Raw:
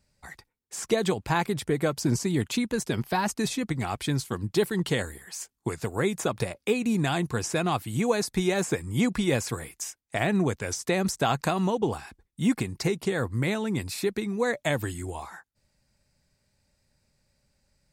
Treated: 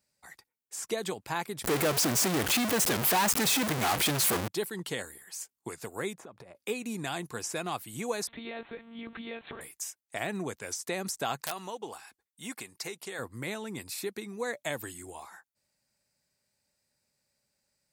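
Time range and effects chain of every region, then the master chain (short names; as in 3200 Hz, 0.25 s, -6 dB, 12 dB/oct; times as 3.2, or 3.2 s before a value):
1.64–4.48 zero-crossing step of -31 dBFS + tone controls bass -1 dB, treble -9 dB + power-law curve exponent 0.35
6.13–6.55 LPF 1000 Hz 6 dB/oct + compressor 10:1, threshold -34 dBFS
8.27–9.61 zero-crossing step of -35.5 dBFS + compressor 3:1, threshold -26 dBFS + monotone LPC vocoder at 8 kHz 230 Hz
11.44–13.19 low shelf 390 Hz -12 dB + wrapped overs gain 17 dB
whole clip: HPF 320 Hz 6 dB/oct; high shelf 8600 Hz +9.5 dB; gain -6.5 dB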